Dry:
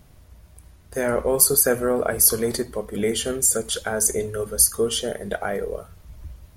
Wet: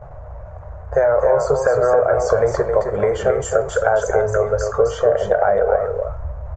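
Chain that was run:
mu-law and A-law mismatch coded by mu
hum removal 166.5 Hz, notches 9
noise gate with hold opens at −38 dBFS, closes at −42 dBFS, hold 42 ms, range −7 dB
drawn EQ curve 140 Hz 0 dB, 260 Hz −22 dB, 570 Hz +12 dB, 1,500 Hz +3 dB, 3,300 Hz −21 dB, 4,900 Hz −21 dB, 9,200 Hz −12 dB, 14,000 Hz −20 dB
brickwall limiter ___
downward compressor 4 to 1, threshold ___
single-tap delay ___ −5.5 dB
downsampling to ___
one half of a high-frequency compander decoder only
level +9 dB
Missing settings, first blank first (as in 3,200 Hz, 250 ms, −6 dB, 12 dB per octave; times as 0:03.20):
−10.5 dBFS, −22 dBFS, 267 ms, 16,000 Hz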